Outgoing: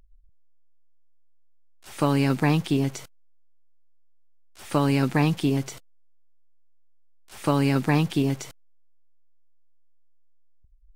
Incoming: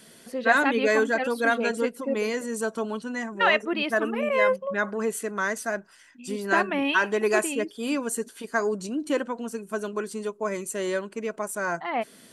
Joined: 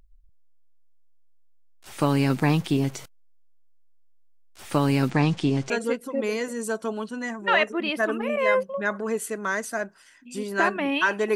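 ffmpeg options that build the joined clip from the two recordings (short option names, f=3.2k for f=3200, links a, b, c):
-filter_complex "[0:a]asettb=1/sr,asplit=3[a][b][c];[a]atrim=end=5.104[d];[b]atrim=start=5.1:end=5.7,asetpts=PTS-STARTPTS,afade=t=in:d=0.004:c=qsin,afade=t=out:st=0.596:d=0.004:c=qsin,lowpass=f=7.8k:w=0.5412,lowpass=f=7.8k:w=1.3066[e];[c]atrim=start=5.696[f];[d][e]acrossfade=d=0.004:c1=hsin:c2=qsin[g];[g][f]acrossfade=d=0.004:c1=qsin:c2=hsin,apad=whole_dur=11.35,atrim=end=11.35,atrim=end=5.702[h];[1:a]atrim=start=1.628:end=7.28[i];[h][i]acrossfade=d=0.004:c1=hsin:c2=hsin"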